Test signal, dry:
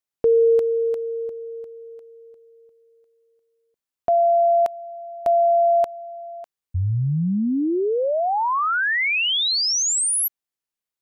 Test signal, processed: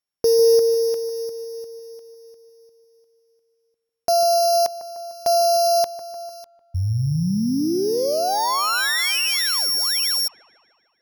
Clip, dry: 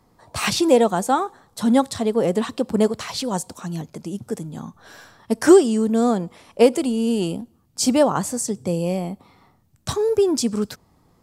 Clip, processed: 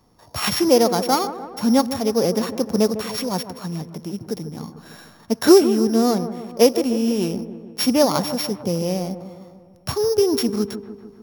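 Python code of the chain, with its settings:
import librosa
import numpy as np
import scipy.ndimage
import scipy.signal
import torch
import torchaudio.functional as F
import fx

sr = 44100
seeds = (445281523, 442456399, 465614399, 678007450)

y = np.r_[np.sort(x[:len(x) // 8 * 8].reshape(-1, 8), axis=1).ravel(), x[len(x) // 8 * 8:]]
y = fx.echo_wet_lowpass(y, sr, ms=150, feedback_pct=59, hz=1500.0, wet_db=-11.5)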